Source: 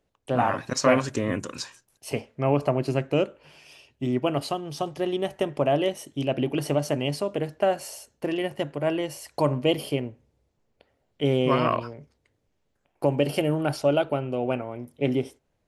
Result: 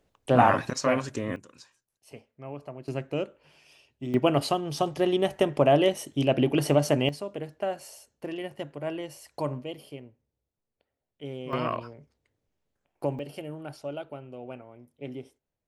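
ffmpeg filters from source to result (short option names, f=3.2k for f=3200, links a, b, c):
-af "asetnsamples=n=441:p=0,asendcmd='0.71 volume volume -5dB;1.36 volume volume -17dB;2.88 volume volume -7dB;4.14 volume volume 2.5dB;7.09 volume volume -7.5dB;9.63 volume volume -15dB;11.53 volume volume -6dB;13.19 volume volume -14dB',volume=4dB"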